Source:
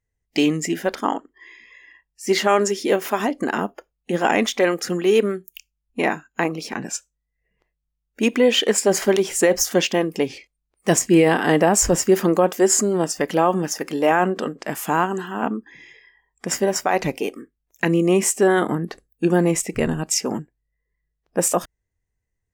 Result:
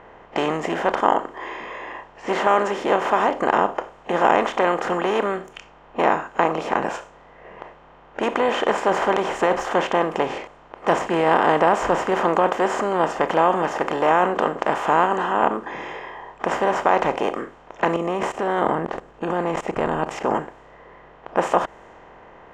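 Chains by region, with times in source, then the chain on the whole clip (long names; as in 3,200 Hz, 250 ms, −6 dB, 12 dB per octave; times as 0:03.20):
0:17.96–0:20.35: low-shelf EQ 390 Hz +11.5 dB + output level in coarse steps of 23 dB
whole clip: compressor on every frequency bin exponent 0.4; drawn EQ curve 330 Hz 0 dB, 970 Hz +13 dB, 15,000 Hz −24 dB; low-pass that shuts in the quiet parts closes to 3,000 Hz, open at −13 dBFS; level −12.5 dB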